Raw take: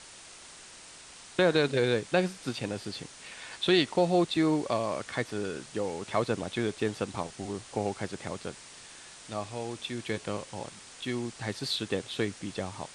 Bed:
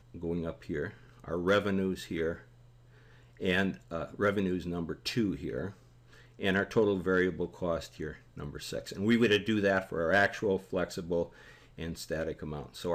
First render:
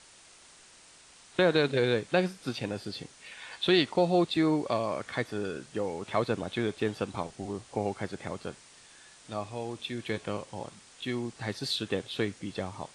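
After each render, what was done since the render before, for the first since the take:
noise reduction from a noise print 6 dB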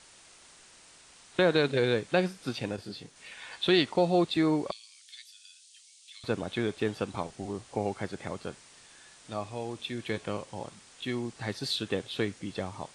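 0:02.76–0:03.16: micro pitch shift up and down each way 58 cents
0:04.71–0:06.24: inverse Chebyshev high-pass filter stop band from 570 Hz, stop band 80 dB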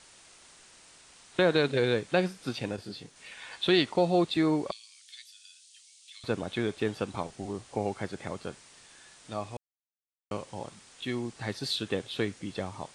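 0:09.57–0:10.31: silence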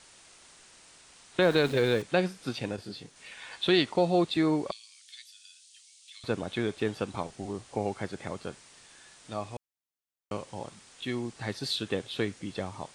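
0:01.42–0:02.02: converter with a step at zero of −38 dBFS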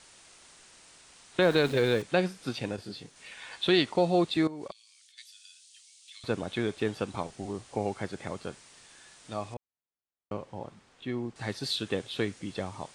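0:04.47–0:05.18: output level in coarse steps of 20 dB
0:09.54–0:11.36: low-pass filter 1,300 Hz 6 dB per octave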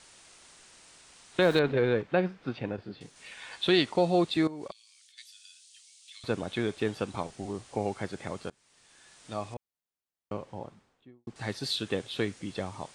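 0:01.59–0:03.01: low-pass filter 2,200 Hz
0:08.50–0:09.31: fade in, from −22.5 dB
0:10.50–0:11.27: fade out and dull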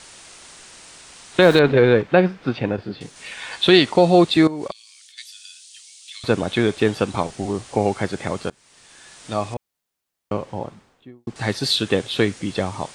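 level +11.5 dB
brickwall limiter −3 dBFS, peak gain reduction 2.5 dB

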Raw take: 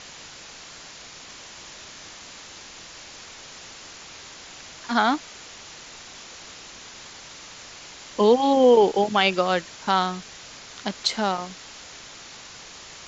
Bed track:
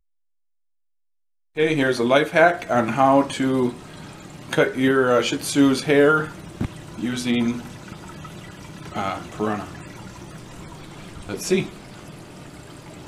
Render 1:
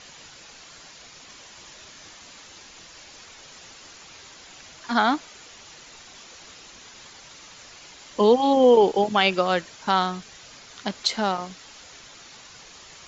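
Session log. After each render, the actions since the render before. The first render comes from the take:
broadband denoise 6 dB, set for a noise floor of −43 dBFS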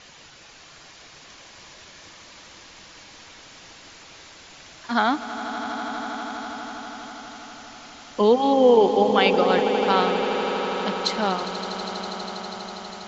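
high-frequency loss of the air 61 metres
echo that builds up and dies away 81 ms, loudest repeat 8, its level −14 dB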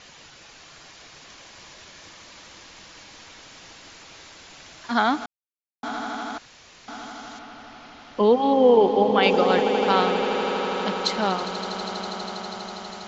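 0:05.26–0:05.83: silence
0:06.38–0:06.88: fill with room tone
0:07.39–0:09.23: high-frequency loss of the air 160 metres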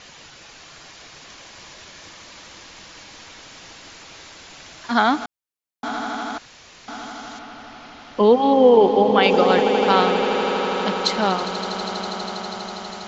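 level +3.5 dB
brickwall limiter −3 dBFS, peak gain reduction 2.5 dB

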